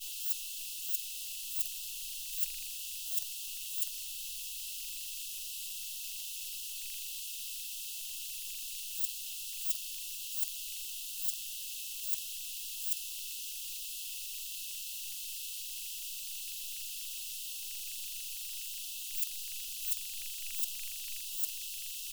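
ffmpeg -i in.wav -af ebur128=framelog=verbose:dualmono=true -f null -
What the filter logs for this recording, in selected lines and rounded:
Integrated loudness:
  I:         -33.5 LUFS
  Threshold: -43.5 LUFS
Loudness range:
  LRA:         3.0 LU
  Threshold: -53.7 LUFS
  LRA low:   -35.4 LUFS
  LRA high:  -32.4 LUFS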